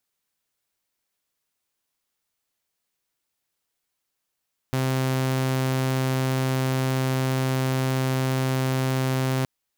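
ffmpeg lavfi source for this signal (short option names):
-f lavfi -i "aevalsrc='0.112*(2*mod(131*t,1)-1)':d=4.72:s=44100"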